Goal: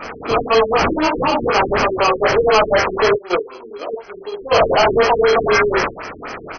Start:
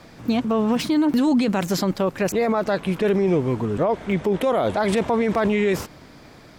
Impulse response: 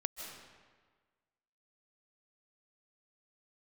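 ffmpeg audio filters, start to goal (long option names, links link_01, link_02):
-filter_complex "[0:a]aecho=1:1:22|56|69:0.631|0.422|0.355,asplit=2[link_01][link_02];[link_02]asoftclip=type=tanh:threshold=-17dB,volume=-3.5dB[link_03];[link_01][link_03]amix=inputs=2:normalize=0,flanger=delay=17.5:depth=7:speed=1.6,asplit=3[link_04][link_05][link_06];[link_04]afade=type=out:start_time=3.16:duration=0.02[link_07];[link_05]agate=range=-22dB:threshold=-13dB:ratio=16:detection=peak,afade=type=in:start_time=3.16:duration=0.02,afade=type=out:start_time=4.51:duration=0.02[link_08];[link_06]afade=type=in:start_time=4.51:duration=0.02[link_09];[link_07][link_08][link_09]amix=inputs=3:normalize=0,highpass=frequency=260:width=0.5412,highpass=frequency=260:width=1.3066,equalizer=frequency=430:width_type=q:width=4:gain=8,equalizer=frequency=730:width_type=q:width=4:gain=3,equalizer=frequency=1200:width_type=q:width=4:gain=7,equalizer=frequency=2400:width_type=q:width=4:gain=7,lowpass=frequency=9100:width=0.5412,lowpass=frequency=9100:width=1.3066,acrossover=split=430[link_10][link_11];[link_10]acompressor=threshold=-38dB:ratio=6[link_12];[link_12][link_11]amix=inputs=2:normalize=0,highshelf=frequency=3300:gain=9.5,asplit=2[link_13][link_14];[link_14]highpass=frequency=720:poles=1,volume=20dB,asoftclip=type=tanh:threshold=-5dB[link_15];[link_13][link_15]amix=inputs=2:normalize=0,lowpass=frequency=3600:poles=1,volume=-6dB,acrusher=samples=12:mix=1:aa=0.000001,afftfilt=real='re*lt(b*sr/1024,440*pow(6500/440,0.5+0.5*sin(2*PI*4*pts/sr)))':imag='im*lt(b*sr/1024,440*pow(6500/440,0.5+0.5*sin(2*PI*4*pts/sr)))':win_size=1024:overlap=0.75"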